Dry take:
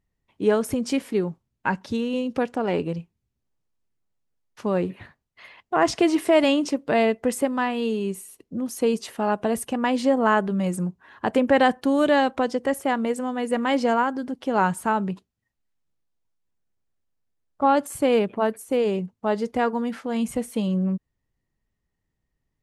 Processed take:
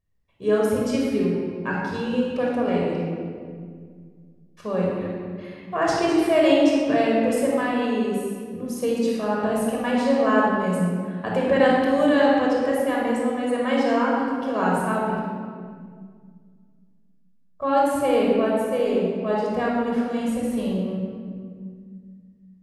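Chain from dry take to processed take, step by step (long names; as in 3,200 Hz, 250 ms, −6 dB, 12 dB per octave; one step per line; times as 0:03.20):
rectangular room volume 3,400 cubic metres, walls mixed, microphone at 5.7 metres
level −7.5 dB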